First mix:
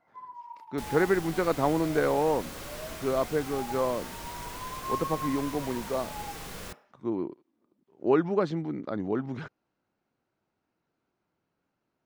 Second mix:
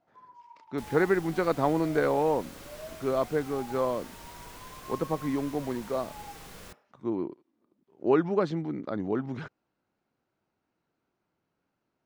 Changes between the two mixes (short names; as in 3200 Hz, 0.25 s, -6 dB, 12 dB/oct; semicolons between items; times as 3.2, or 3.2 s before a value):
first sound: add band-pass 660 Hz, Q 3.1; second sound -6.0 dB